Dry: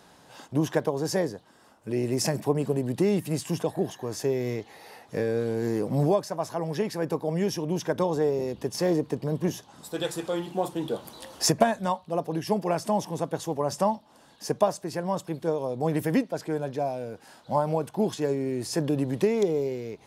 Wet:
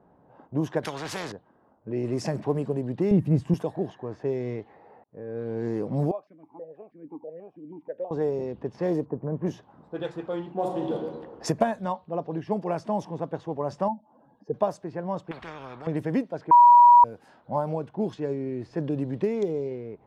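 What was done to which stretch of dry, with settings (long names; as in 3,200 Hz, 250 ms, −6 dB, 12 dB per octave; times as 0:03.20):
0:00.83–0:01.32: every bin compressed towards the loudest bin 4 to 1
0:02.04–0:02.60: mu-law and A-law mismatch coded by mu
0:03.11–0:03.54: RIAA equalisation playback
0:05.04–0:05.60: fade in
0:06.11–0:08.11: formant filter that steps through the vowels 6.2 Hz
0:09.04–0:09.45: low-pass filter 1,100 Hz → 2,300 Hz 24 dB per octave
0:10.53–0:10.94: thrown reverb, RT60 1.4 s, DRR 0 dB
0:11.93–0:12.36: Butterworth low-pass 6,300 Hz
0:13.88–0:14.54: expanding power law on the bin magnitudes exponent 2
0:15.31–0:15.87: every bin compressed towards the loudest bin 10 to 1
0:16.51–0:17.04: beep over 964 Hz −7 dBFS
0:17.73–0:19.71: parametric band 850 Hz −3 dB 1.5 octaves
whole clip: low-pass that shuts in the quiet parts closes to 830 Hz, open at −19.5 dBFS; high-shelf EQ 2,600 Hz −10.5 dB; level −1.5 dB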